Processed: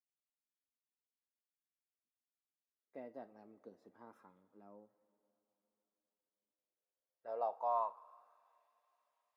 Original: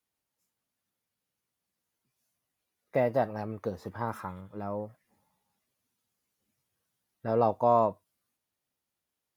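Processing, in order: differentiator; two-slope reverb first 0.28 s, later 4.3 s, from -18 dB, DRR 13 dB; band-pass sweep 270 Hz -> 1900 Hz, 6.43–8.59; gain +10 dB

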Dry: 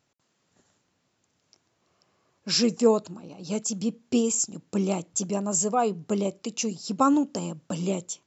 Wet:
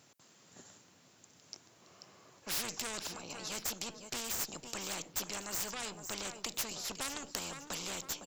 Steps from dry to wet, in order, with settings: HPF 97 Hz; high shelf 6400 Hz +8.5 dB; tube stage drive 20 dB, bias 0.35; feedback echo 0.508 s, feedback 21%, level -22 dB; spectral compressor 4:1; gain -1 dB

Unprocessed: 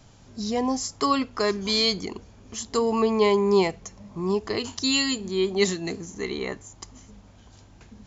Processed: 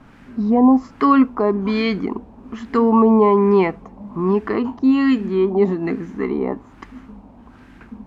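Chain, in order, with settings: added noise violet -41 dBFS; in parallel at -2 dB: limiter -17 dBFS, peak gain reduction 9.5 dB; on the sum: fifteen-band EQ 100 Hz -7 dB, 250 Hz +10 dB, 630 Hz -3 dB, 2500 Hz +4 dB; LFO low-pass sine 1.2 Hz 830–1700 Hz

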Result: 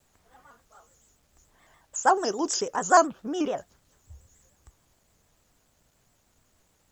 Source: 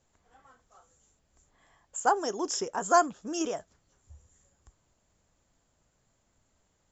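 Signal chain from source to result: 3.07–3.58 LPF 3100 Hz 12 dB/oct; requantised 12-bit, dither none; shaped vibrato square 6.9 Hz, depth 100 cents; gain +4 dB

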